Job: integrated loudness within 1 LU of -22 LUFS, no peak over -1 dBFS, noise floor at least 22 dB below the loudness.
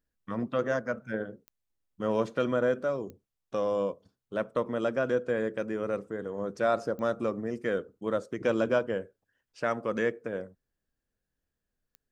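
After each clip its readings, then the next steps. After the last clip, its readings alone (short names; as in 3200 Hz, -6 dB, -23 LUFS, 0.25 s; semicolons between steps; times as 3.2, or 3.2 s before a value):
clicks 4; loudness -31.0 LUFS; peak -13.0 dBFS; loudness target -22.0 LUFS
-> de-click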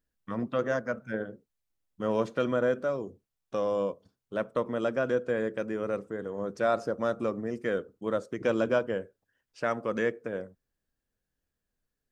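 clicks 0; loudness -31.0 LUFS; peak -13.0 dBFS; loudness target -22.0 LUFS
-> gain +9 dB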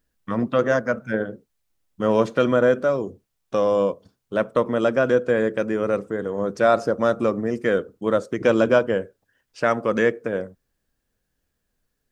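loudness -22.0 LUFS; peak -4.0 dBFS; noise floor -77 dBFS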